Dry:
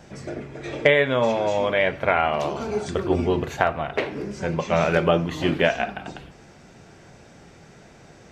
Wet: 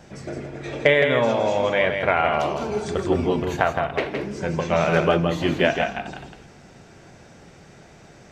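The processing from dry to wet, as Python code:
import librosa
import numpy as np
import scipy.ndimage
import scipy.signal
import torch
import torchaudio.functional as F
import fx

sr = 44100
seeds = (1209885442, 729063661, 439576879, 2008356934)

y = x + 10.0 ** (-6.0 / 20.0) * np.pad(x, (int(165 * sr / 1000.0), 0))[:len(x)]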